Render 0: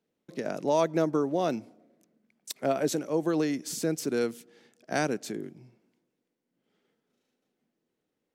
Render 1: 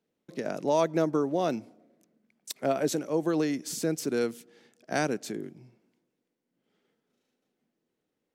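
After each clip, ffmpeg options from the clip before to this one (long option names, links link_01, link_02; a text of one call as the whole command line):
ffmpeg -i in.wav -af anull out.wav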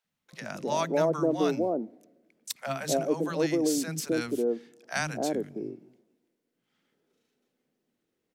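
ffmpeg -i in.wav -filter_complex "[0:a]acrossover=split=210|760[link_01][link_02][link_03];[link_01]adelay=40[link_04];[link_02]adelay=260[link_05];[link_04][link_05][link_03]amix=inputs=3:normalize=0,volume=2.5dB" out.wav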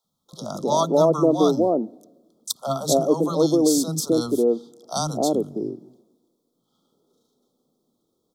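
ffmpeg -i in.wav -af "asuperstop=centerf=2100:order=20:qfactor=1.1,volume=8dB" out.wav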